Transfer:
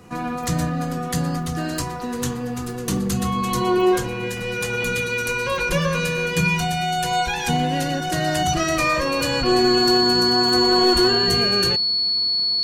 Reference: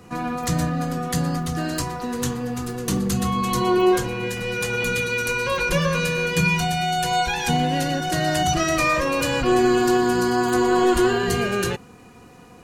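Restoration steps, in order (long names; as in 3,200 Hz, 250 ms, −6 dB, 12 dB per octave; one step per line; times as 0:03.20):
clipped peaks rebuilt −9 dBFS
notch filter 4,400 Hz, Q 30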